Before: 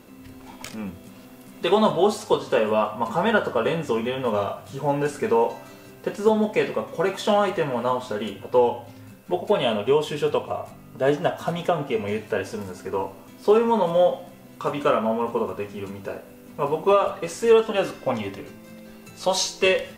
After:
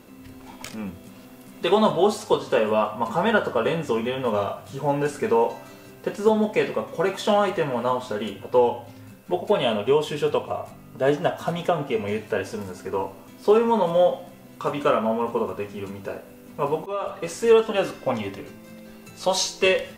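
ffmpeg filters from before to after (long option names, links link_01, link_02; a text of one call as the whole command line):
ffmpeg -i in.wav -filter_complex "[0:a]asplit=2[link_01][link_02];[link_01]atrim=end=16.86,asetpts=PTS-STARTPTS,afade=type=out:start_time=16.856:duration=0.004:curve=hsin:silence=0.0944061[link_03];[link_02]atrim=start=16.86,asetpts=PTS-STARTPTS,afade=type=in:duration=0.41:silence=0.0944061[link_04];[link_03][link_04]concat=n=2:v=0:a=1" out.wav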